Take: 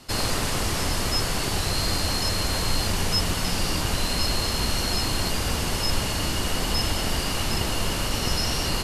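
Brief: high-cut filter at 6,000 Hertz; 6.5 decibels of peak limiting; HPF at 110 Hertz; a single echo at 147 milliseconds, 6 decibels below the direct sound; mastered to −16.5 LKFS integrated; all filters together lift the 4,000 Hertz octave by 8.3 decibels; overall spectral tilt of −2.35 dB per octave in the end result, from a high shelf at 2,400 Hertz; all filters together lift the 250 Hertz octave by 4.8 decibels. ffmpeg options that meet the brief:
ffmpeg -i in.wav -af "highpass=110,lowpass=6000,equalizer=frequency=250:width_type=o:gain=6.5,highshelf=frequency=2400:gain=5.5,equalizer=frequency=4000:width_type=o:gain=6.5,alimiter=limit=-13.5dB:level=0:latency=1,aecho=1:1:147:0.501,volume=3.5dB" out.wav

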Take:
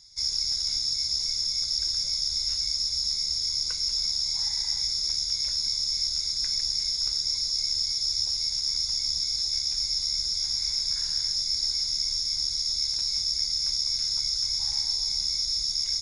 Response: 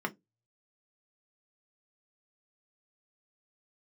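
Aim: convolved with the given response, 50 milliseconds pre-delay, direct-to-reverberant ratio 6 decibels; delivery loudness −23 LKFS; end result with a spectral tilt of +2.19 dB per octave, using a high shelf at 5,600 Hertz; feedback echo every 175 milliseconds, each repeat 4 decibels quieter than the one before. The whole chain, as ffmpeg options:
-filter_complex "[0:a]highshelf=frequency=5600:gain=5.5,aecho=1:1:175|350|525|700|875|1050|1225|1400|1575:0.631|0.398|0.25|0.158|0.0994|0.0626|0.0394|0.0249|0.0157,asplit=2[link_01][link_02];[1:a]atrim=start_sample=2205,adelay=50[link_03];[link_02][link_03]afir=irnorm=-1:irlink=0,volume=-11.5dB[link_04];[link_01][link_04]amix=inputs=2:normalize=0,volume=-3dB"

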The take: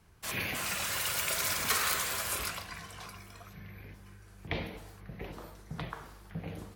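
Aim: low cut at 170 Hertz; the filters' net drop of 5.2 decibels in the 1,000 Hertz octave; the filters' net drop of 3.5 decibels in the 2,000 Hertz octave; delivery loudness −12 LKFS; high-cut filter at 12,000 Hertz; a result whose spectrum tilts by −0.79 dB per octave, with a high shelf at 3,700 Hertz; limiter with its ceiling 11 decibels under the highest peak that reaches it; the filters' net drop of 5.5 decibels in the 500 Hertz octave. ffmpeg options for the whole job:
ffmpeg -i in.wav -af "highpass=170,lowpass=12000,equalizer=frequency=500:width_type=o:gain=-5.5,equalizer=frequency=1000:width_type=o:gain=-4.5,equalizer=frequency=2000:width_type=o:gain=-5.5,highshelf=frequency=3700:gain=8.5,volume=19.5dB,alimiter=limit=-2.5dB:level=0:latency=1" out.wav

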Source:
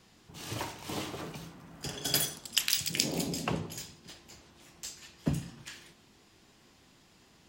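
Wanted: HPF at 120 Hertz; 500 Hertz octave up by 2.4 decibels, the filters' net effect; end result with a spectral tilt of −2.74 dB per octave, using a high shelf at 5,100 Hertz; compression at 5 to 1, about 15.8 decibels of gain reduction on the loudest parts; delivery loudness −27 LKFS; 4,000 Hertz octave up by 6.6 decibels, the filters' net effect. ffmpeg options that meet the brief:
ffmpeg -i in.wav -af "highpass=120,equalizer=frequency=500:width_type=o:gain=3,equalizer=frequency=4000:width_type=o:gain=6.5,highshelf=frequency=5100:gain=4.5,acompressor=threshold=-36dB:ratio=5,volume=13dB" out.wav

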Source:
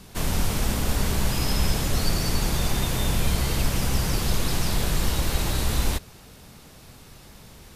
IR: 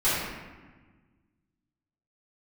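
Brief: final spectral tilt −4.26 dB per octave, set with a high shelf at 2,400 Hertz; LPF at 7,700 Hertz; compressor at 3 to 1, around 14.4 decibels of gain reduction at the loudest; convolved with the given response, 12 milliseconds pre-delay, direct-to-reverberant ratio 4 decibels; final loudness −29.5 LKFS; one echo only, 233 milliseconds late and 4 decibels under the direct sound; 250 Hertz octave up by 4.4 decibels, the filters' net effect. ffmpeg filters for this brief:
-filter_complex "[0:a]lowpass=7700,equalizer=frequency=250:width_type=o:gain=6,highshelf=frequency=2400:gain=5,acompressor=threshold=-37dB:ratio=3,aecho=1:1:233:0.631,asplit=2[link_01][link_02];[1:a]atrim=start_sample=2205,adelay=12[link_03];[link_02][link_03]afir=irnorm=-1:irlink=0,volume=-18.5dB[link_04];[link_01][link_04]amix=inputs=2:normalize=0,volume=5.5dB"

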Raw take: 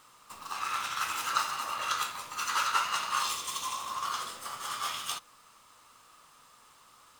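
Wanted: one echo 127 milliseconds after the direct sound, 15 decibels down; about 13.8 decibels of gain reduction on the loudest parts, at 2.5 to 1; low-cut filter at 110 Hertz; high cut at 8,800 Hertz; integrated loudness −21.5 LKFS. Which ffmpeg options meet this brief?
ffmpeg -i in.wav -af "highpass=110,lowpass=8800,acompressor=threshold=-45dB:ratio=2.5,aecho=1:1:127:0.178,volume=21dB" out.wav

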